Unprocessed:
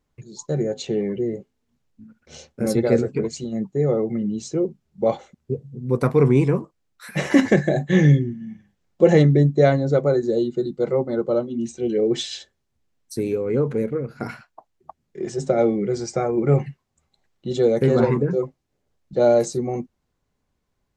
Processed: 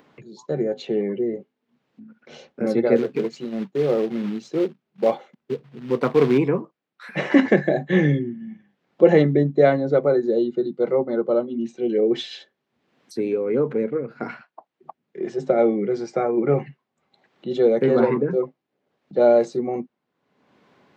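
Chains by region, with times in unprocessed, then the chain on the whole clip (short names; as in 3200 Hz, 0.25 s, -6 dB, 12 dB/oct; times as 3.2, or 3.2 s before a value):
2.96–6.38 low shelf 75 Hz -6.5 dB + short-mantissa float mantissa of 2-bit
whole clip: HPF 100 Hz; three-band isolator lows -23 dB, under 160 Hz, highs -23 dB, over 4000 Hz; upward compressor, threshold -40 dBFS; gain +1 dB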